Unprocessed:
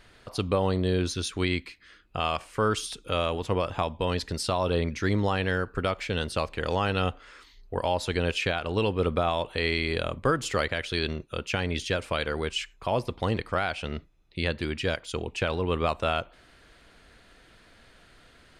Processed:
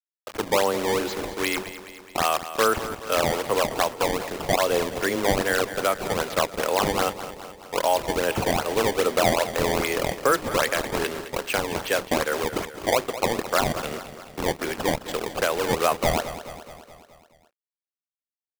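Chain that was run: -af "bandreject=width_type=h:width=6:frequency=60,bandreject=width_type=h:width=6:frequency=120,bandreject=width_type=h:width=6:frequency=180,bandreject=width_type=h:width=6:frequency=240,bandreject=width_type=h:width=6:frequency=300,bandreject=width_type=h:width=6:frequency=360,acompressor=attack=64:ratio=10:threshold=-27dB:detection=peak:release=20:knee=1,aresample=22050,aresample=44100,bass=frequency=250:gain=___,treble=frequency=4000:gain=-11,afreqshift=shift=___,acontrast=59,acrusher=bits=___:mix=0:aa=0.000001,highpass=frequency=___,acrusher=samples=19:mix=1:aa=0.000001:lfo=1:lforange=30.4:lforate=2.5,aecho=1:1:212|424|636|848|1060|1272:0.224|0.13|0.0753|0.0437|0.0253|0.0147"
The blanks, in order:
-13, 13, 5, 190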